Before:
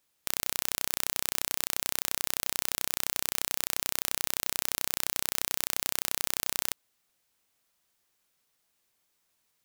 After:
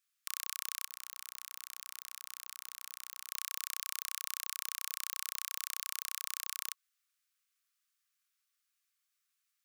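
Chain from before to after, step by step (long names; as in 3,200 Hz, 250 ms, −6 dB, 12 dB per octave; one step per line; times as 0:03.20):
Chebyshev high-pass filter 1,100 Hz, order 10
0:00.87–0:03.30: compressor whose output falls as the input rises −38 dBFS, ratio −0.5
level −7.5 dB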